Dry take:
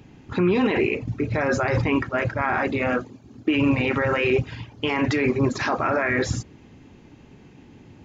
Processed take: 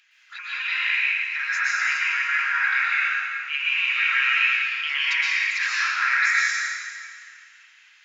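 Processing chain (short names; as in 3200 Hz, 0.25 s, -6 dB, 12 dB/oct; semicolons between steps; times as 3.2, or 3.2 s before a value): steep high-pass 1500 Hz 36 dB/oct; high shelf 6400 Hz -9 dB; plate-style reverb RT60 2.2 s, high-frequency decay 0.9×, pre-delay 0.105 s, DRR -7 dB; gain +2 dB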